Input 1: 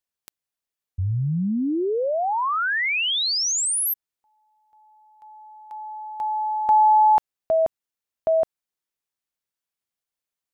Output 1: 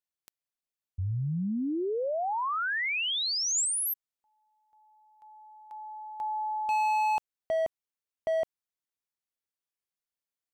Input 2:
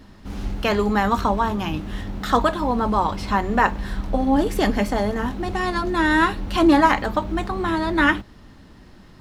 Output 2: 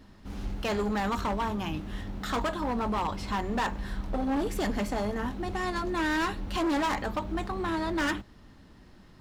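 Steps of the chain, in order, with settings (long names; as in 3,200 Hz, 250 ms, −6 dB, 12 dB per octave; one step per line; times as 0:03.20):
gain into a clipping stage and back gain 18 dB
dynamic equaliser 7,200 Hz, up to +4 dB, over −51 dBFS, Q 4.6
level −7 dB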